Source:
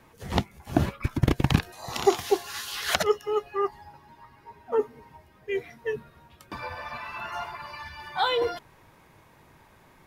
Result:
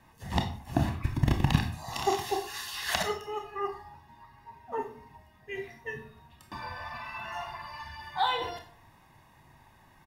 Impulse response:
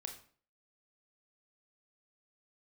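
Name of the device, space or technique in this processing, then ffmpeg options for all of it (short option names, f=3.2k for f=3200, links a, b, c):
microphone above a desk: -filter_complex "[0:a]aecho=1:1:1.1:0.55[a];[1:a]atrim=start_sample=2205[b];[a][b]afir=irnorm=-1:irlink=0,volume=-1dB"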